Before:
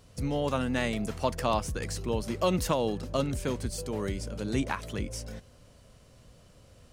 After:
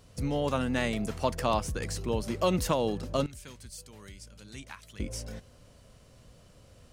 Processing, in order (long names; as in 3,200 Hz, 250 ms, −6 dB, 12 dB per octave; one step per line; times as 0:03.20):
0:03.26–0:05.00: guitar amp tone stack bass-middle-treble 5-5-5